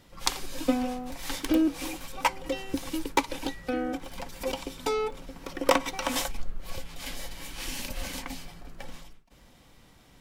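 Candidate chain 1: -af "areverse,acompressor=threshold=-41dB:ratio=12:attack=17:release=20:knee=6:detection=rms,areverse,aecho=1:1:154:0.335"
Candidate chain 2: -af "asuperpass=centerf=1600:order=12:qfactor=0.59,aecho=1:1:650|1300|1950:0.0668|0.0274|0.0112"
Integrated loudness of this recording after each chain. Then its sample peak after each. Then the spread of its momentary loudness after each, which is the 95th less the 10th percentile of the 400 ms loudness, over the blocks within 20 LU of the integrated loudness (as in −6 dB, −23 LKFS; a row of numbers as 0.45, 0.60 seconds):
−42.5, −36.5 LKFS; −26.0, −7.5 dBFS; 9, 18 LU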